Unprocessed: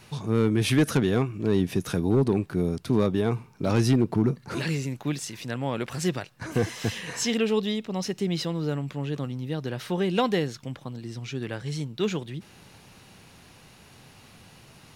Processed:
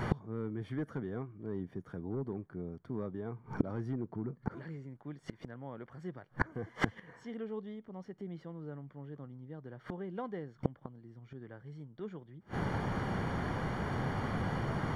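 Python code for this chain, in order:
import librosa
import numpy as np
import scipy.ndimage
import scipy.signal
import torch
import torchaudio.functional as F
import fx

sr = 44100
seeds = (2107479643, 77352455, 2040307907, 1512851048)

y = scipy.signal.savgol_filter(x, 41, 4, mode='constant')
y = fx.gate_flip(y, sr, shuts_db=-32.0, range_db=-34)
y = F.gain(torch.from_numpy(y), 18.0).numpy()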